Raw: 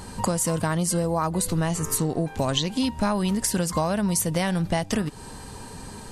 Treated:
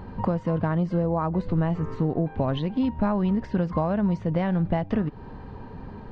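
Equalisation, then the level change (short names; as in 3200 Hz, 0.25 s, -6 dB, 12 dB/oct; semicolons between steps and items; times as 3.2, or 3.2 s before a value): air absorption 200 m; tape spacing loss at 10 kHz 36 dB; +2.0 dB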